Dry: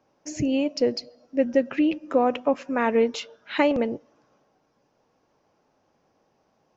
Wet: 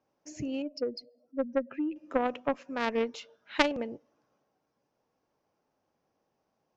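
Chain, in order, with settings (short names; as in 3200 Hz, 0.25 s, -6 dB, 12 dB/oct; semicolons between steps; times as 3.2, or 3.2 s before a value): 0.62–1.96 spectral contrast raised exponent 1.6; added harmonics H 2 -18 dB, 3 -9 dB, 4 -28 dB, 5 -23 dB, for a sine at -7 dBFS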